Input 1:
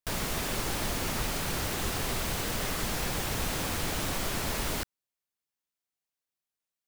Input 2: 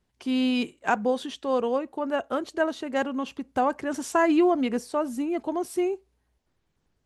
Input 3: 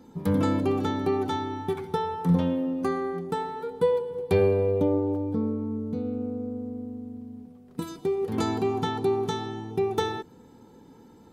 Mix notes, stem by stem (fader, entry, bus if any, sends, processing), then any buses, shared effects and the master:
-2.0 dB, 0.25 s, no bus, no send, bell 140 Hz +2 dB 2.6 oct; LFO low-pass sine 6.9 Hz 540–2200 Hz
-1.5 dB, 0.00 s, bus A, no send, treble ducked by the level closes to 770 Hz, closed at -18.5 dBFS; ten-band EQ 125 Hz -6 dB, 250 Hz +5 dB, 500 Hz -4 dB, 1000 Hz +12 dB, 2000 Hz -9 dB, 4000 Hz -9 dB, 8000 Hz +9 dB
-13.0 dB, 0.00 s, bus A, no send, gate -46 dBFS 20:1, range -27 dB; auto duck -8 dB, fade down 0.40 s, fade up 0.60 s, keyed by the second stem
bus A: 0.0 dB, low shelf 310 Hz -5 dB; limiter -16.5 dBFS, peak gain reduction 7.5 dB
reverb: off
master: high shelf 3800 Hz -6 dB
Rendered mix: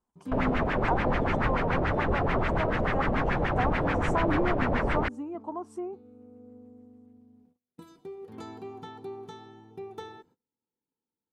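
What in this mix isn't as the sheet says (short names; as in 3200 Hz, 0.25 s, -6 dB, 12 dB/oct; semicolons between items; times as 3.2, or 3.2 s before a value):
stem 1 -2.0 dB -> +4.5 dB; stem 2 -1.5 dB -> -9.0 dB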